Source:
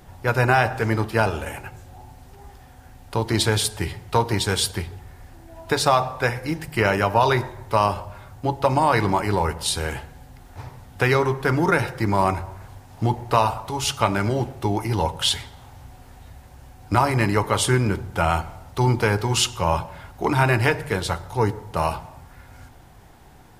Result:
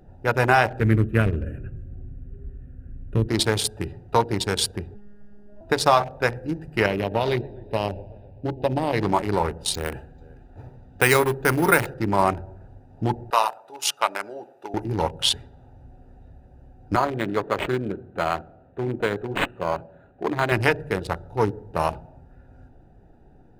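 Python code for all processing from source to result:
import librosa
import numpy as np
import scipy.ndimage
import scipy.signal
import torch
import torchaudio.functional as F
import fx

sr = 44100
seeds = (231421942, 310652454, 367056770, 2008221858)

y = fx.chain(x, sr, fx.low_shelf(hz=230.0, db=12.0),
    fx.fixed_phaser(hz=2000.0, stages=4), at=(0.8, 3.29))
y = fx.chain(y, sr, fx.robotise(hz=205.0),
    fx.doubler(ms=14.0, db=-3.5), at=(4.94, 5.61))
y = fx.chain(y, sr, fx.fixed_phaser(hz=3000.0, stages=4),
    fx.echo_warbled(ms=128, feedback_pct=61, rate_hz=2.8, cents=193, wet_db=-16), at=(6.86, 9.01))
y = fx.chain(y, sr, fx.high_shelf(hz=2600.0, db=8.5),
    fx.echo_single(ms=441, db=-20.5),
    fx.resample_bad(factor=4, down='filtered', up='hold'), at=(9.74, 11.94))
y = fx.chain(y, sr, fx.highpass(hz=730.0, slope=12),
    fx.high_shelf(hz=10000.0, db=8.0), at=(13.3, 14.74))
y = fx.chain(y, sr, fx.highpass(hz=280.0, slope=6),
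    fx.notch(hz=880.0, q=7.6),
    fx.resample_linear(factor=8), at=(16.96, 20.52))
y = fx.wiener(y, sr, points=41)
y = fx.peak_eq(y, sr, hz=89.0, db=-6.5, octaves=1.9)
y = fx.notch(y, sr, hz=7500.0, q=23.0)
y = F.gain(torch.from_numpy(y), 1.5).numpy()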